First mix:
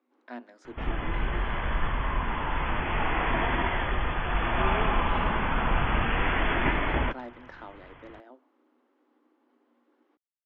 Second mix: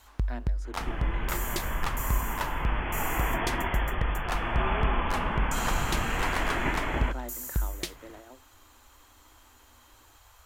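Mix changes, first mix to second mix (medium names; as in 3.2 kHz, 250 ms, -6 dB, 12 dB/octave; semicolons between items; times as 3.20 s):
speech: remove distance through air 110 m; first sound: unmuted; second sound -3.0 dB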